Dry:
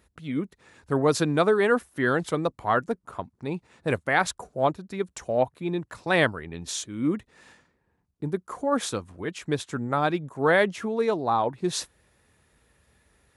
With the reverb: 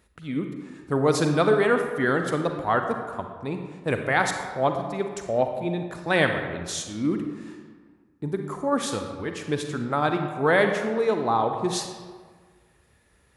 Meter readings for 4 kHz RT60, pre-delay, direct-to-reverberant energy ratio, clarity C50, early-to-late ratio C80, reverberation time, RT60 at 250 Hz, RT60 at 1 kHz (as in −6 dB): 0.90 s, 37 ms, 5.0 dB, 5.5 dB, 7.5 dB, 1.6 s, 1.6 s, 1.6 s